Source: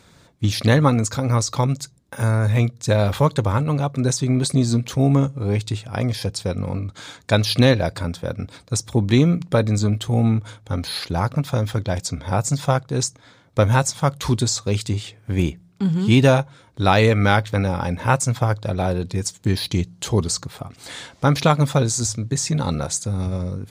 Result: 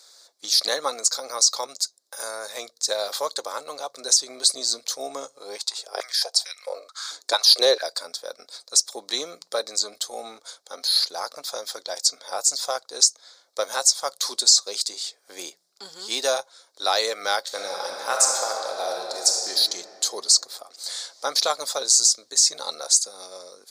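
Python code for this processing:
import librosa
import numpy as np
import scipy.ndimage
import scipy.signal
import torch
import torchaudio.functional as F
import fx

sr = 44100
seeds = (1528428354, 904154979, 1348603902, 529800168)

y = fx.filter_held_highpass(x, sr, hz=4.5, low_hz=310.0, high_hz=2100.0, at=(5.57, 7.81), fade=0.02)
y = fx.reverb_throw(y, sr, start_s=17.4, length_s=2.1, rt60_s=2.9, drr_db=-0.5)
y = scipy.signal.sosfilt(scipy.signal.butter(4, 510.0, 'highpass', fs=sr, output='sos'), y)
y = fx.high_shelf_res(y, sr, hz=3500.0, db=9.0, q=3.0)
y = fx.notch(y, sr, hz=920.0, q=12.0)
y = y * 10.0 ** (-4.5 / 20.0)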